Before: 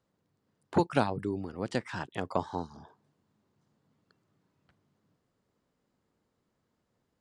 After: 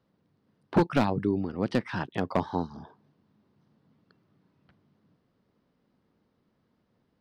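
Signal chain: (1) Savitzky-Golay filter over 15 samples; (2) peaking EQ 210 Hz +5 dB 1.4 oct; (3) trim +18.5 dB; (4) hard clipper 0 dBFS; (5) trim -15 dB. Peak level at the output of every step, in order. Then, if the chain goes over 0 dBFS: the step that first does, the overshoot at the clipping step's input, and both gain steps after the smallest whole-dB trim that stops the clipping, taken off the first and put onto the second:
-10.5 dBFS, -9.5 dBFS, +9.0 dBFS, 0.0 dBFS, -15.0 dBFS; step 3, 9.0 dB; step 3 +9.5 dB, step 5 -6 dB

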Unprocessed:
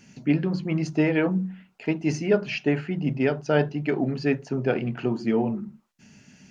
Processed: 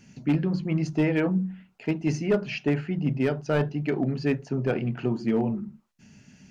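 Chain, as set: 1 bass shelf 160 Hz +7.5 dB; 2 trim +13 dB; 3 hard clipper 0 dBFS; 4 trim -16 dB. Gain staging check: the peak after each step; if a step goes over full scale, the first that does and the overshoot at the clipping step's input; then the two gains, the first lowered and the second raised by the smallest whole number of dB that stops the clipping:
-6.5 dBFS, +6.5 dBFS, 0.0 dBFS, -16.0 dBFS; step 2, 6.5 dB; step 2 +6 dB, step 4 -9 dB

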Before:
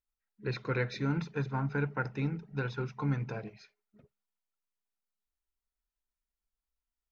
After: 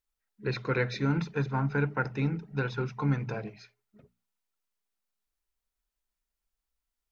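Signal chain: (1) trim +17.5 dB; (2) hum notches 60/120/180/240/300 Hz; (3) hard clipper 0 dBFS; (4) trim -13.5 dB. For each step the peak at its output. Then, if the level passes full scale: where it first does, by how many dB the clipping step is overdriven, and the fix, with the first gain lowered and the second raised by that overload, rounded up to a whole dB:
-1.0 dBFS, -2.0 dBFS, -2.0 dBFS, -15.5 dBFS; nothing clips

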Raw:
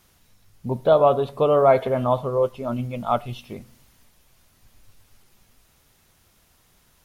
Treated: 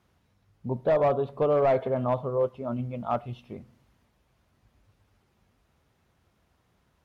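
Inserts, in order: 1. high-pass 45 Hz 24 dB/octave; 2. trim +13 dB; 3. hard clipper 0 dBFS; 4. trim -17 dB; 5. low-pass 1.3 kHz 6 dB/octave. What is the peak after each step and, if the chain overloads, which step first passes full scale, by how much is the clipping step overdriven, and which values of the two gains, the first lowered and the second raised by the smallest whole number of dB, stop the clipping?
-4.5 dBFS, +8.5 dBFS, 0.0 dBFS, -17.0 dBFS, -17.0 dBFS; step 2, 8.5 dB; step 2 +4 dB, step 4 -8 dB

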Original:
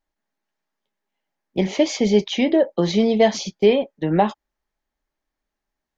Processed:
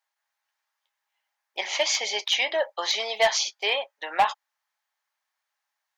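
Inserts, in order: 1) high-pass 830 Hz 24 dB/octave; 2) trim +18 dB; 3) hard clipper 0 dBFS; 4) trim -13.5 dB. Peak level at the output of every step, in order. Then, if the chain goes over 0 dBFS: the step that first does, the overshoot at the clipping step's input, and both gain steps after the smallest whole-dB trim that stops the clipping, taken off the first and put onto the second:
-11.0 dBFS, +7.0 dBFS, 0.0 dBFS, -13.5 dBFS; step 2, 7.0 dB; step 2 +11 dB, step 4 -6.5 dB

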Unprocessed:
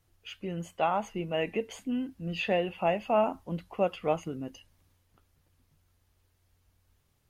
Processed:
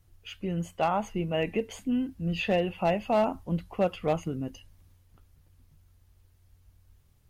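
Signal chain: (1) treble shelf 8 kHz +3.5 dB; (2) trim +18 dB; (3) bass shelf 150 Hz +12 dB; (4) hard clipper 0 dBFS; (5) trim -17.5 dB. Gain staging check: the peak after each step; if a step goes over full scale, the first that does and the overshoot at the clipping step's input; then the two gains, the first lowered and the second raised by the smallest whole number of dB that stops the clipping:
-14.0 dBFS, +4.0 dBFS, +4.0 dBFS, 0.0 dBFS, -17.5 dBFS; step 2, 4.0 dB; step 2 +14 dB, step 5 -13.5 dB

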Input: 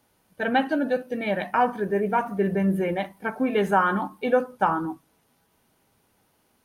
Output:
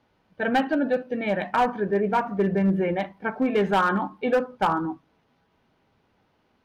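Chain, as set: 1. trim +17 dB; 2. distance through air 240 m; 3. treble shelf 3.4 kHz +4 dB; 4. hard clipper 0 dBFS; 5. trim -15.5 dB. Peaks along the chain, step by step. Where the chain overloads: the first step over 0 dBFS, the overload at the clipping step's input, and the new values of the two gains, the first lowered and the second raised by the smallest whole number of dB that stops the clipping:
+8.5 dBFS, +7.0 dBFS, +7.5 dBFS, 0.0 dBFS, -15.5 dBFS; step 1, 7.5 dB; step 1 +9 dB, step 5 -7.5 dB

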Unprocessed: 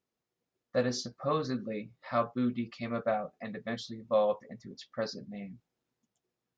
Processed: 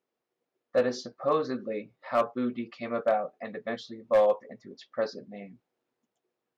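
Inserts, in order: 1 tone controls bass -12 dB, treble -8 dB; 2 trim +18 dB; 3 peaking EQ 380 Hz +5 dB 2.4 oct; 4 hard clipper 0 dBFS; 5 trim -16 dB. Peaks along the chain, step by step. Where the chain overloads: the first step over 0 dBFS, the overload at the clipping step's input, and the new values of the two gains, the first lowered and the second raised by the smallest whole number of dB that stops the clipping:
-16.0 dBFS, +2.0 dBFS, +5.5 dBFS, 0.0 dBFS, -16.0 dBFS; step 2, 5.5 dB; step 2 +12 dB, step 5 -10 dB

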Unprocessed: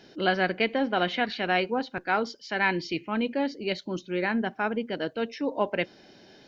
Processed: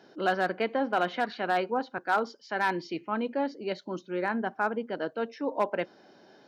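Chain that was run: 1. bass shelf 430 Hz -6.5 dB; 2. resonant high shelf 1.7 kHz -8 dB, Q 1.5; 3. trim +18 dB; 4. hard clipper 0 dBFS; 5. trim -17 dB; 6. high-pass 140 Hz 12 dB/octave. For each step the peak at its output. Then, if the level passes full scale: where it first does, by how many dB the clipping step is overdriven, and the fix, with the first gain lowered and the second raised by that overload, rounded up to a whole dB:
-11.0 dBFS, -12.0 dBFS, +6.0 dBFS, 0.0 dBFS, -17.0 dBFS, -14.5 dBFS; step 3, 6.0 dB; step 3 +12 dB, step 5 -11 dB

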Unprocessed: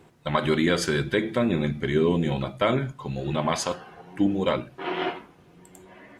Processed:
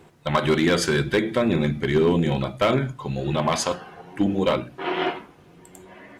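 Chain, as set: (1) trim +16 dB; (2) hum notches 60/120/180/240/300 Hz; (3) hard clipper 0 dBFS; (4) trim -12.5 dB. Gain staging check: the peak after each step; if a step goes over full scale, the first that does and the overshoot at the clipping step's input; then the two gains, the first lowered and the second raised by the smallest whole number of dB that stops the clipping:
+6.5 dBFS, +6.5 dBFS, 0.0 dBFS, -12.5 dBFS; step 1, 6.5 dB; step 1 +9 dB, step 4 -5.5 dB

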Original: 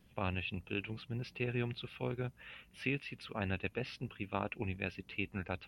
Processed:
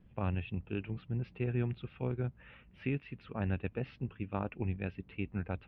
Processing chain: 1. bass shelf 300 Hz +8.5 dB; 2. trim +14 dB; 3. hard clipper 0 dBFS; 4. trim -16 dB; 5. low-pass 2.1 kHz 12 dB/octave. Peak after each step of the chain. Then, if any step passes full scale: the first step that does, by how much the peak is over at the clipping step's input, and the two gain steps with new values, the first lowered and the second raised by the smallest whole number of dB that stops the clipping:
-18.5 dBFS, -4.5 dBFS, -4.5 dBFS, -20.5 dBFS, -21.5 dBFS; nothing clips

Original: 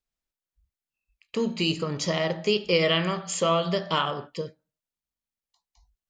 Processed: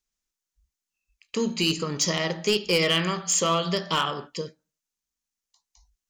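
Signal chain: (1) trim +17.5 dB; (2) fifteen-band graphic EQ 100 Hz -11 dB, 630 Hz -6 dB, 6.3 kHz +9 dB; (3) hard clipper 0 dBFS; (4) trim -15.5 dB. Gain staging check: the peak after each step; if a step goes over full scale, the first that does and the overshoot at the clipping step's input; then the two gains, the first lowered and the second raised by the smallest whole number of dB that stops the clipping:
+7.0 dBFS, +7.5 dBFS, 0.0 dBFS, -15.5 dBFS; step 1, 7.5 dB; step 1 +9.5 dB, step 4 -7.5 dB

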